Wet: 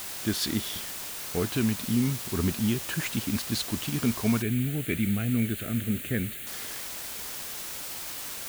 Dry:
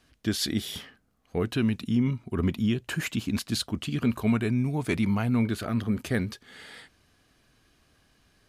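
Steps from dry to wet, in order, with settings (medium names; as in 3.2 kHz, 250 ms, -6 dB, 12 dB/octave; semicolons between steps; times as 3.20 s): word length cut 6-bit, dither triangular; 4.42–6.47 s: static phaser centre 2.3 kHz, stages 4; trim -1 dB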